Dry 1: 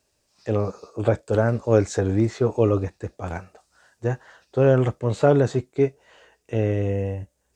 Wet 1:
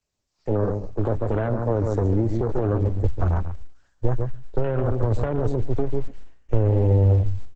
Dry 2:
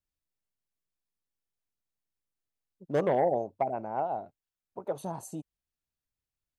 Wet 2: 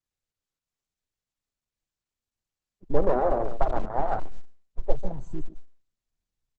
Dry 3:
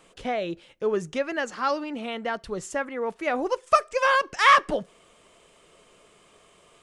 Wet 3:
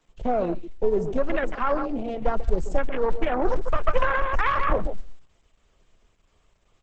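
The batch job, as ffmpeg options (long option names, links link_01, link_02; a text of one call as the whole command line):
ffmpeg -i in.wav -filter_complex "[0:a]aeval=exprs='if(lt(val(0),0),0.447*val(0),val(0))':channel_layout=same,lowshelf=frequency=130:gain=8.5,asplit=2[link_01][link_02];[link_02]adelay=141,lowpass=frequency=4900:poles=1,volume=-10.5dB,asplit=2[link_03][link_04];[link_04]adelay=141,lowpass=frequency=4900:poles=1,volume=0.16[link_05];[link_03][link_05]amix=inputs=2:normalize=0[link_06];[link_01][link_06]amix=inputs=2:normalize=0,afwtdn=0.0251,acrossover=split=100|260|2300[link_07][link_08][link_09][link_10];[link_07]acompressor=threshold=-29dB:ratio=4[link_11];[link_08]acompressor=threshold=-29dB:ratio=4[link_12];[link_09]acompressor=threshold=-22dB:ratio=4[link_13];[link_10]acompressor=threshold=-52dB:ratio=4[link_14];[link_11][link_12][link_13][link_14]amix=inputs=4:normalize=0,alimiter=limit=-20.5dB:level=0:latency=1:release=56,asubboost=boost=8.5:cutoff=61,volume=7dB" -ar 48000 -c:a libopus -b:a 10k out.opus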